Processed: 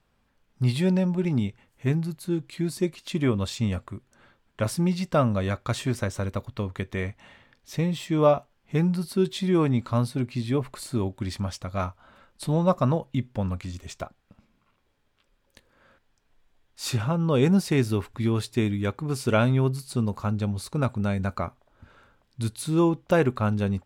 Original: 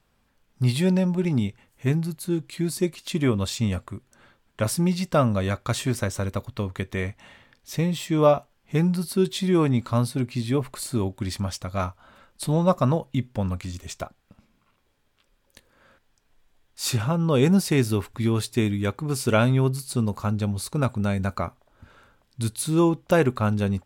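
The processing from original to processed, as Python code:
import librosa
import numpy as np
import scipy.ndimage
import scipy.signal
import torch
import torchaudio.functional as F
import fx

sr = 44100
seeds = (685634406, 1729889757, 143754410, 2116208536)

y = fx.high_shelf(x, sr, hz=6600.0, db=-7.5)
y = y * 10.0 ** (-1.5 / 20.0)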